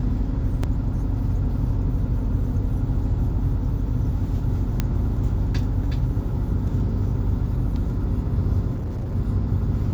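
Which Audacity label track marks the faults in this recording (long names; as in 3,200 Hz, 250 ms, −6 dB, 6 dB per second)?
0.630000	0.640000	drop-out 5.2 ms
4.800000	4.800000	click −8 dBFS
8.750000	9.160000	clipping −24.5 dBFS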